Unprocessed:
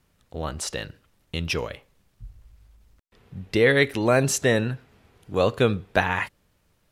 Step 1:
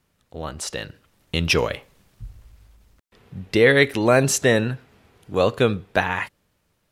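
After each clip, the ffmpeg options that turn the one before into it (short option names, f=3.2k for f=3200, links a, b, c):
-af "dynaudnorm=f=280:g=9:m=12dB,lowshelf=f=64:g=-7,volume=-1dB"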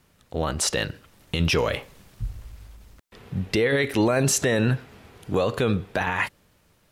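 -af "acompressor=threshold=-20dB:ratio=5,alimiter=limit=-20dB:level=0:latency=1:release=15,volume=7dB"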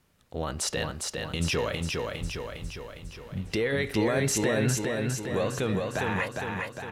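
-af "aecho=1:1:407|814|1221|1628|2035|2442|2849|3256:0.668|0.388|0.225|0.13|0.0756|0.0439|0.0254|0.0148,volume=-6dB"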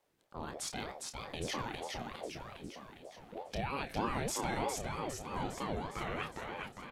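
-filter_complex "[0:a]asplit=2[a][b];[b]adelay=28,volume=-8dB[c];[a][c]amix=inputs=2:normalize=0,aeval=exprs='val(0)*sin(2*PI*470*n/s+470*0.5/3.2*sin(2*PI*3.2*n/s))':c=same,volume=-8dB"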